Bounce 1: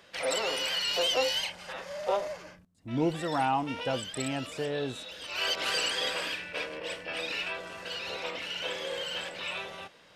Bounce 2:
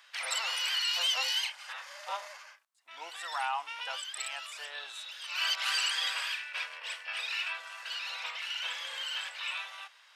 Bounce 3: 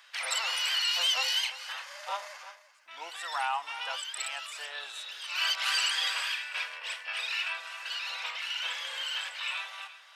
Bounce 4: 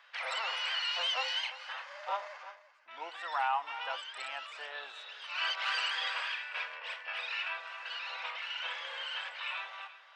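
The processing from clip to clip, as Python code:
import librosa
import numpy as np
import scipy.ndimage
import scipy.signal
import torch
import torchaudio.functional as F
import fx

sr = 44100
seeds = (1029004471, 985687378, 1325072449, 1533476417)

y1 = scipy.signal.sosfilt(scipy.signal.butter(4, 960.0, 'highpass', fs=sr, output='sos'), x)
y2 = y1 + 10.0 ** (-15.0 / 20.0) * np.pad(y1, (int(344 * sr / 1000.0), 0))[:len(y1)]
y2 = fx.end_taper(y2, sr, db_per_s=270.0)
y2 = y2 * 10.0 ** (2.0 / 20.0)
y3 = fx.spacing_loss(y2, sr, db_at_10k=28)
y3 = y3 * 10.0 ** (3.0 / 20.0)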